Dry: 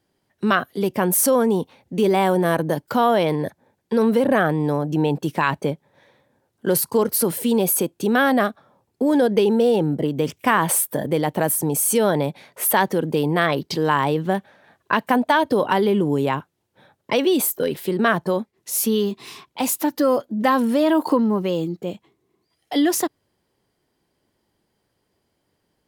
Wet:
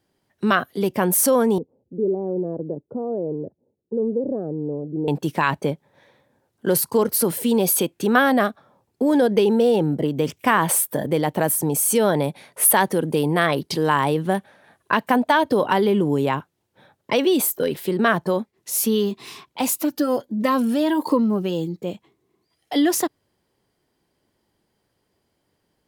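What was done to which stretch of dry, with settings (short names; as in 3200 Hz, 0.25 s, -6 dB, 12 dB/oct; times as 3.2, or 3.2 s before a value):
1.58–5.08 ladder low-pass 520 Hz, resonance 45%
7.63–8.18 bell 5700 Hz -> 1100 Hz +8.5 dB
12.17–14.95 bell 10000 Hz +10.5 dB 0.34 oct
19.75–21.84 cascading phaser rising 1.4 Hz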